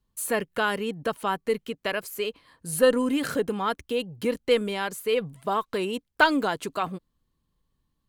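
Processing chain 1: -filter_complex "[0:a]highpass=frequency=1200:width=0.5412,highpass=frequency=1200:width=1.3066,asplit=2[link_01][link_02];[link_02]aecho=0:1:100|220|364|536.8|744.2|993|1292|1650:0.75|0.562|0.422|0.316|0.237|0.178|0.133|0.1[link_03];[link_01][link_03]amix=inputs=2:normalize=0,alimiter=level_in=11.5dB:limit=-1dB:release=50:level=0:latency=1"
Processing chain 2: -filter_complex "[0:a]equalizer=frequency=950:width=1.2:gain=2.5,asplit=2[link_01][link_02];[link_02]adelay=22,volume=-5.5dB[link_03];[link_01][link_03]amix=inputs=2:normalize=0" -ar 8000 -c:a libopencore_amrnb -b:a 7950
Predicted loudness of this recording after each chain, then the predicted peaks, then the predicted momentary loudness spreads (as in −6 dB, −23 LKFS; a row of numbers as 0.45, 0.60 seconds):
−18.0, −25.5 LKFS; −1.0, −4.5 dBFS; 9, 10 LU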